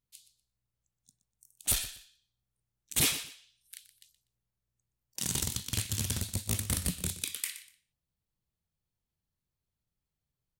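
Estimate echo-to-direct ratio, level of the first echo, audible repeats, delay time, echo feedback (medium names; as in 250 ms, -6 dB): -14.5 dB, -14.5 dB, 2, 122 ms, 22%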